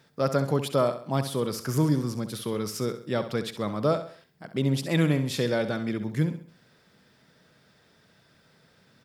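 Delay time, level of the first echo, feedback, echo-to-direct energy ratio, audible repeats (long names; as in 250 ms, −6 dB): 66 ms, −11.0 dB, 40%, −10.0 dB, 4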